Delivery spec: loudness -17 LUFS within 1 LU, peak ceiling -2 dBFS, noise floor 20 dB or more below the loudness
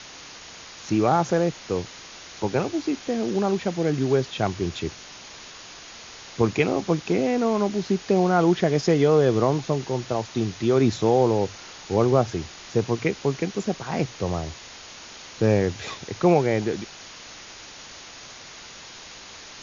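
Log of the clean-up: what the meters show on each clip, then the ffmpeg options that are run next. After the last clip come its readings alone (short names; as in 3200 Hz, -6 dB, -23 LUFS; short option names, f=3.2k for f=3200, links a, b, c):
noise floor -43 dBFS; noise floor target -44 dBFS; loudness -23.5 LUFS; peak -6.0 dBFS; loudness target -17.0 LUFS
-> -af "afftdn=nr=6:nf=-43"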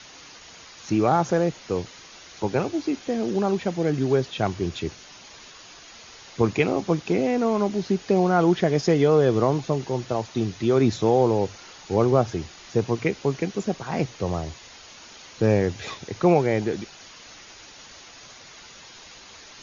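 noise floor -46 dBFS; loudness -23.5 LUFS; peak -6.0 dBFS; loudness target -17.0 LUFS
-> -af "volume=6.5dB,alimiter=limit=-2dB:level=0:latency=1"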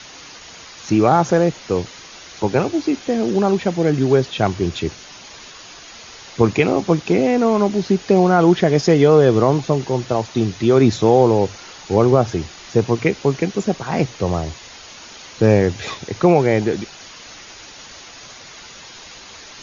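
loudness -17.5 LUFS; peak -2.0 dBFS; noise floor -40 dBFS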